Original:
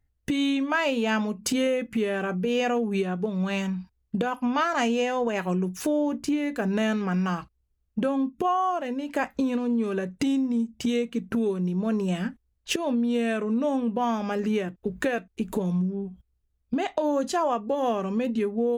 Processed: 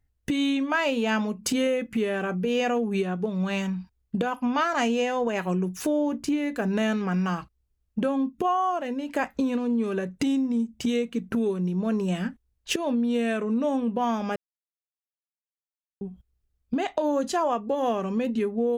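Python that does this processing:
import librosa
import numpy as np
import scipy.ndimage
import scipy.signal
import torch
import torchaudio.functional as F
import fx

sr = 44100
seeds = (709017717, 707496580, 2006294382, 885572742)

y = fx.edit(x, sr, fx.silence(start_s=14.36, length_s=1.65), tone=tone)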